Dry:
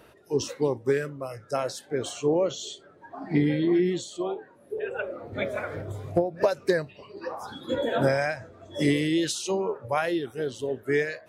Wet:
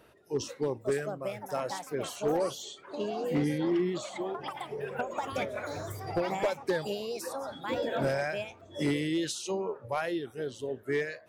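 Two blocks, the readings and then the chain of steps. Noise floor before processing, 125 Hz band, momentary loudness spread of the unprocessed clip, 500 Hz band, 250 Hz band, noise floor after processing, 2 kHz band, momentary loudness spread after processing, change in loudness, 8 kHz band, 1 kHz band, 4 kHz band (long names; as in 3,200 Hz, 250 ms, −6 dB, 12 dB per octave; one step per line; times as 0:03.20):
−55 dBFS, −6.0 dB, 14 LU, −5.0 dB, −5.5 dB, −55 dBFS, −5.0 dB, 8 LU, −5.0 dB, −4.5 dB, −2.0 dB, −4.0 dB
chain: delay with pitch and tempo change per echo 631 ms, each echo +6 semitones, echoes 2, each echo −6 dB
gain into a clipping stage and back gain 16.5 dB
level −5.5 dB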